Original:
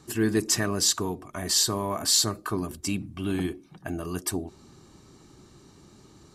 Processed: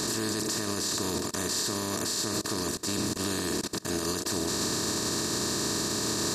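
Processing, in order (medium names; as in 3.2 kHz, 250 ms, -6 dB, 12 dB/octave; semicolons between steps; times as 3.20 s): spectral levelling over time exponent 0.2; level held to a coarse grid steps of 24 dB; peak limiter -17 dBFS, peak gain reduction 11 dB; trim -3 dB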